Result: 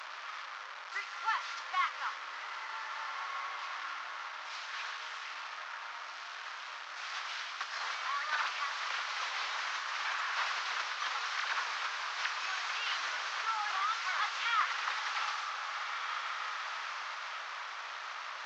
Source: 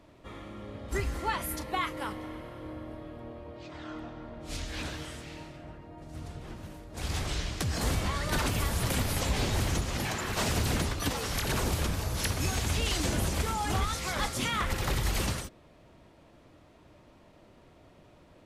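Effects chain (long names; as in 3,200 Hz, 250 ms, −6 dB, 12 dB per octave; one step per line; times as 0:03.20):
linear delta modulator 32 kbit/s, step −32.5 dBFS
four-pole ladder high-pass 1,000 Hz, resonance 40%
high-shelf EQ 4,200 Hz −8 dB
feedback delay with all-pass diffusion 1,664 ms, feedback 41%, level −5.5 dB
level +6.5 dB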